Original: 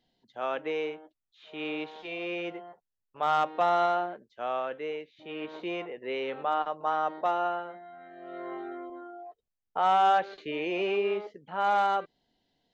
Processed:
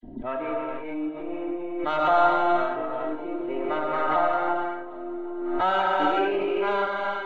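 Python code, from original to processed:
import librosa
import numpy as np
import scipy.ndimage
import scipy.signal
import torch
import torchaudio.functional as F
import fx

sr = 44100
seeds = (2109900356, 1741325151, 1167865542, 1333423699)

y = np.where(x < 0.0, 10.0 ** (-7.0 / 20.0) * x, x)
y = fx.env_lowpass(y, sr, base_hz=320.0, full_db=-22.5)
y = fx.low_shelf(y, sr, hz=64.0, db=-8.0)
y = fx.notch(y, sr, hz=5200.0, q=6.5)
y = y + 0.7 * np.pad(y, (int(3.1 * sr / 1000.0), 0))[:len(y)]
y = fx.dispersion(y, sr, late='lows', ms=58.0, hz=2000.0)
y = fx.stretch_vocoder(y, sr, factor=0.57)
y = fx.air_absorb(y, sr, metres=150.0)
y = fx.echo_feedback(y, sr, ms=763, feedback_pct=52, wet_db=-22.5)
y = fx.rev_gated(y, sr, seeds[0], gate_ms=500, shape='flat', drr_db=-3.5)
y = fx.pre_swell(y, sr, db_per_s=39.0)
y = F.gain(torch.from_numpy(y), 2.0).numpy()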